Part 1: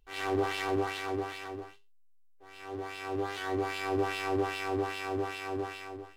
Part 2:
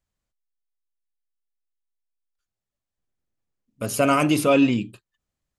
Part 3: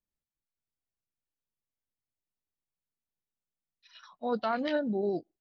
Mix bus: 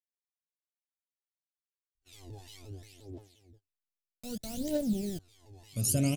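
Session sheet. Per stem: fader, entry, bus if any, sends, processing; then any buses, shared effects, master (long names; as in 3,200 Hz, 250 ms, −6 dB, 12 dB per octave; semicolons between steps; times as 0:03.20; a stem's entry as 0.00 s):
−10.0 dB, 1.95 s, no send, pitch modulation by a square or saw wave saw down 5.7 Hz, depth 250 cents; automatic ducking −10 dB, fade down 1.55 s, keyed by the third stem
−3.0 dB, 1.95 s, no send, no processing
−0.5 dB, 0.00 s, no send, centre clipping without the shift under −34 dBFS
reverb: not used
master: noise gate −55 dBFS, range −23 dB; drawn EQ curve 150 Hz 0 dB, 400 Hz −11 dB, 600 Hz −10 dB, 1,200 Hz −29 dB, 3,800 Hz −5 dB, 7,000 Hz +1 dB; phase shifter 0.63 Hz, delay 1.2 ms, feedback 66%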